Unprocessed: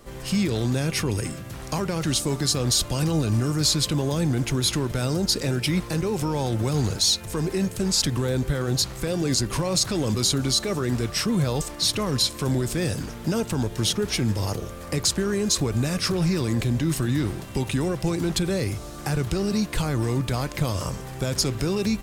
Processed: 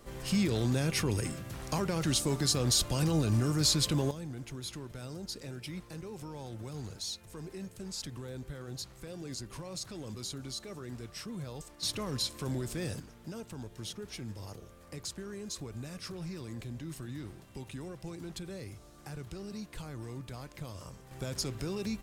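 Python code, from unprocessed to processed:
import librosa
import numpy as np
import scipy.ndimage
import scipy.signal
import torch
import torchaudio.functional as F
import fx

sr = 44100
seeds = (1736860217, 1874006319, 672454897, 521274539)

y = fx.gain(x, sr, db=fx.steps((0.0, -5.5), (4.11, -18.0), (11.83, -11.0), (13.0, -18.0), (21.11, -11.5)))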